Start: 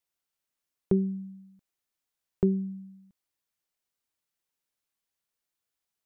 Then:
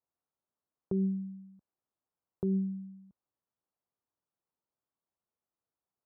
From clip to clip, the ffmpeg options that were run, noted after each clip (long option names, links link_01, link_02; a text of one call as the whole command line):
ffmpeg -i in.wav -af "highpass=59,alimiter=level_in=0.5dB:limit=-24dB:level=0:latency=1,volume=-0.5dB,lowpass=frequency=1200:width=0.5412,lowpass=frequency=1200:width=1.3066,volume=1dB" out.wav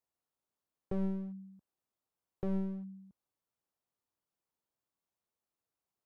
ffmpeg -i in.wav -af "aeval=exprs='clip(val(0),-1,0.00891)':channel_layout=same" out.wav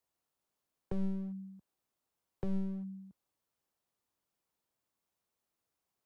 ffmpeg -i in.wav -filter_complex "[0:a]acrossover=split=160|3000[link_01][link_02][link_03];[link_02]acompressor=threshold=-46dB:ratio=4[link_04];[link_01][link_04][link_03]amix=inputs=3:normalize=0,volume=4dB" out.wav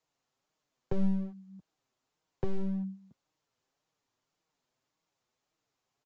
ffmpeg -i in.wav -af "flanger=delay=6.3:depth=1.7:regen=-10:speed=1.8:shape=sinusoidal,aresample=16000,aresample=44100,volume=9dB" out.wav